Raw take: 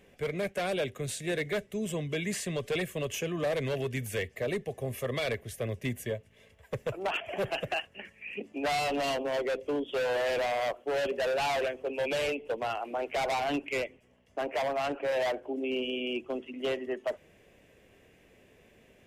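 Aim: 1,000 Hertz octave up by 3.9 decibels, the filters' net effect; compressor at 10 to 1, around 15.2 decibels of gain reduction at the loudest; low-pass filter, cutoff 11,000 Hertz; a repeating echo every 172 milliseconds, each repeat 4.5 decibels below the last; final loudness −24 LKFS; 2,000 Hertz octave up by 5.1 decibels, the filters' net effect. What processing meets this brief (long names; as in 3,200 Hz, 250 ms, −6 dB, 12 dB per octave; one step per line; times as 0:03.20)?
low-pass filter 11,000 Hz
parametric band 1,000 Hz +5 dB
parametric band 2,000 Hz +5 dB
downward compressor 10 to 1, threshold −40 dBFS
repeating echo 172 ms, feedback 60%, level −4.5 dB
level +17.5 dB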